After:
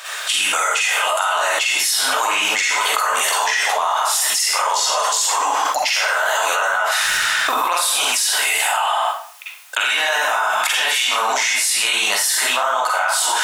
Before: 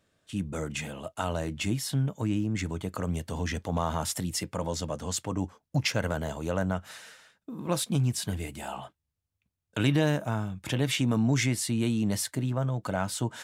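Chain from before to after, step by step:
high-pass filter 860 Hz 24 dB per octave
0:07.02–0:07.57: leveller curve on the samples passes 2
convolution reverb RT60 0.50 s, pre-delay 38 ms, DRR −9 dB
envelope flattener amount 100%

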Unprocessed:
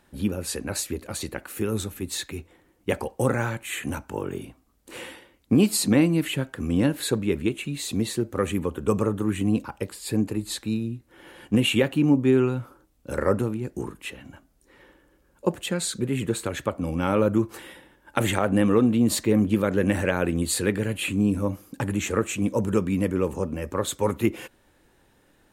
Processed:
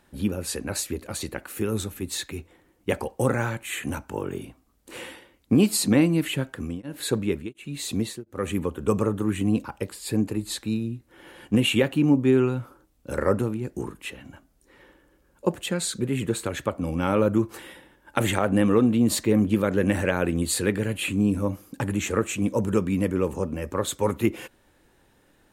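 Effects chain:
0:06.47–0:08.79: tremolo along a rectified sine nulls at 1.4 Hz

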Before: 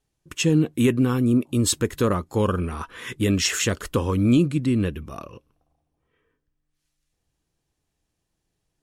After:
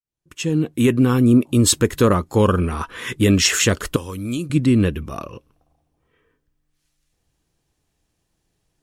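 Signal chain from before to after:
fade in at the beginning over 1.22 s
0:03.96–0:04.50: first-order pre-emphasis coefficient 0.8
level +6 dB

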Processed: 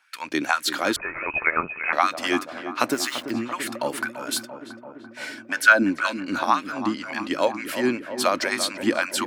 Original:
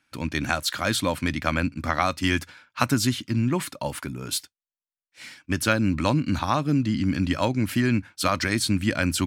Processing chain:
0:02.91–0:03.31: hold until the input has moved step −38.5 dBFS
0:04.02–0:05.82: hollow resonant body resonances 260/630/1,500 Hz, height 12 dB → 16 dB
in parallel at +0.5 dB: downward compressor, threshold −32 dBFS, peak gain reduction 20 dB
on the sum: auto-filter high-pass sine 2 Hz 310–1,800 Hz
on a send: feedback echo with a low-pass in the loop 339 ms, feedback 79%, low-pass 1,500 Hz, level −10 dB
0:00.96–0:01.93: on the sum: voice inversion scrambler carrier 2,800 Hz
level −2.5 dB

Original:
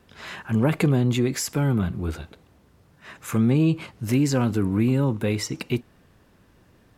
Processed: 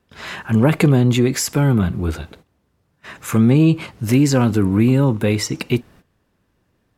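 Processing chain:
noise gate −50 dBFS, range −15 dB
level +6.5 dB

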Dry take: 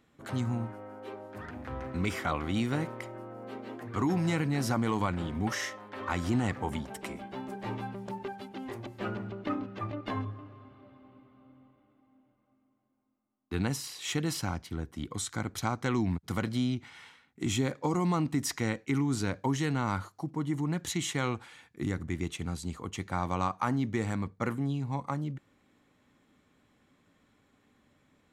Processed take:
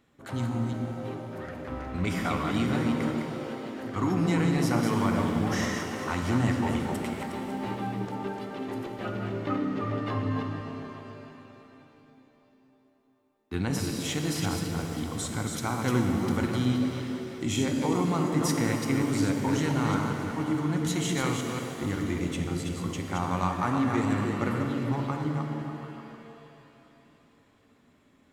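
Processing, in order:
delay that plays each chunk backwards 183 ms, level −4.5 dB
echo through a band-pass that steps 148 ms, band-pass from 210 Hz, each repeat 0.7 octaves, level −2 dB
reverb with rising layers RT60 3 s, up +7 semitones, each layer −8 dB, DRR 4.5 dB

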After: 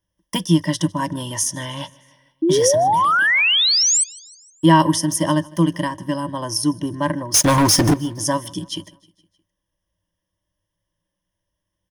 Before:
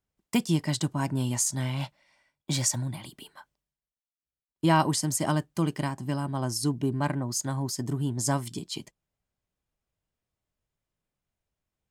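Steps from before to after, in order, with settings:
EQ curve with evenly spaced ripples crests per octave 1.2, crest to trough 16 dB
0:02.42–0:04.04: sound drawn into the spectrogram rise 310–8,500 Hz −20 dBFS
0:07.34–0:07.94: leveller curve on the samples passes 5
repeating echo 155 ms, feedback 57%, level −24 dB
level +4 dB

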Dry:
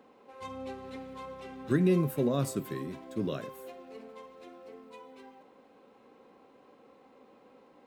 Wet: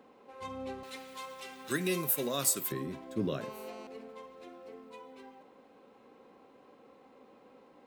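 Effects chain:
0:00.83–0:02.72: spectral tilt +4.5 dB per octave
0:03.41–0:03.87: phone interference −49 dBFS

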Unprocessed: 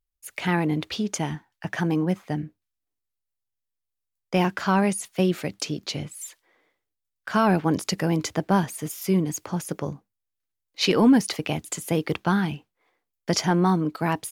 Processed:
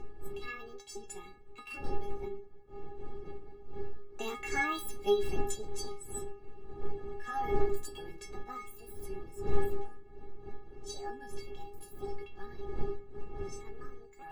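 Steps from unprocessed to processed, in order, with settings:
pitch shifter swept by a sawtooth +9.5 semitones, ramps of 1,003 ms
source passing by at 0:04.44, 13 m/s, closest 15 metres
wind on the microphone 230 Hz −30 dBFS
in parallel at −2 dB: upward compression, threshold −27 dBFS
on the sum: stiff-string resonator 400 Hz, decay 0.34 s, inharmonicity 0.008
on a send at −16.5 dB: convolution reverb RT60 0.30 s, pre-delay 3 ms
on the sum: level +4 dB

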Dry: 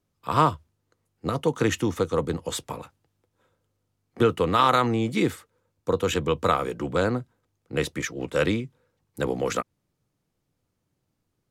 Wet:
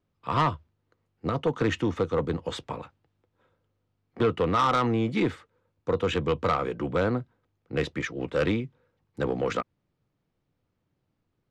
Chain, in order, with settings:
low-pass filter 3,600 Hz 12 dB per octave
soft clipping −16 dBFS, distortion −13 dB

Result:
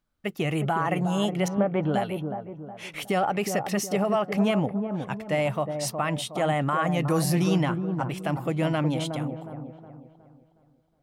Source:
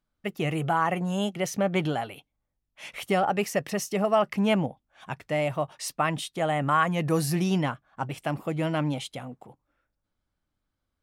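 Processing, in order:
0:01.48–0:01.94: low-pass filter 1,400 Hz 12 dB per octave
brickwall limiter −18 dBFS, peak gain reduction 7.5 dB
delay with a low-pass on its return 365 ms, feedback 39%, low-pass 890 Hz, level −5.5 dB
level +2 dB

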